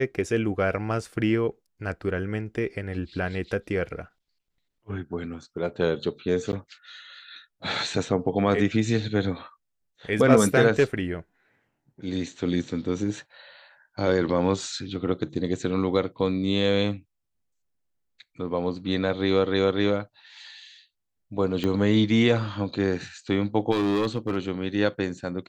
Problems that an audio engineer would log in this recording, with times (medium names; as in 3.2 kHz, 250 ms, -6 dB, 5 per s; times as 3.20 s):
6.52–6.53 s: dropout 9.8 ms
21.64 s: pop -15 dBFS
23.71–24.36 s: clipped -19.5 dBFS